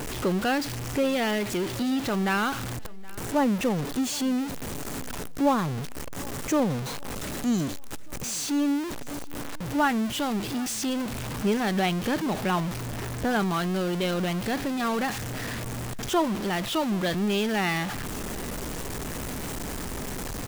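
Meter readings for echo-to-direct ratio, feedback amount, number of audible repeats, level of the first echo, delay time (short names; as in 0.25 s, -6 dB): -21.5 dB, 40%, 2, -22.0 dB, 0.771 s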